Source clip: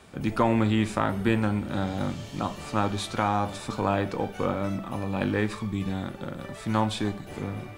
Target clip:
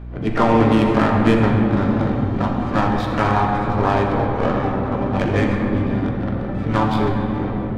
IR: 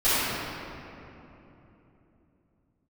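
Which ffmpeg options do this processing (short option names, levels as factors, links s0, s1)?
-filter_complex "[0:a]asplit=3[s0][s1][s2];[s1]asetrate=58866,aresample=44100,atempo=0.749154,volume=0.501[s3];[s2]asetrate=88200,aresample=44100,atempo=0.5,volume=0.158[s4];[s0][s3][s4]amix=inputs=3:normalize=0,adynamicsmooth=sensitivity=2.5:basefreq=1600,aeval=exprs='val(0)+0.0126*(sin(2*PI*60*n/s)+sin(2*PI*2*60*n/s)/2+sin(2*PI*3*60*n/s)/3+sin(2*PI*4*60*n/s)/4+sin(2*PI*5*60*n/s)/5)':c=same,asplit=2[s5][s6];[1:a]atrim=start_sample=2205,asetrate=36162,aresample=44100[s7];[s6][s7]afir=irnorm=-1:irlink=0,volume=0.106[s8];[s5][s8]amix=inputs=2:normalize=0,volume=1.58"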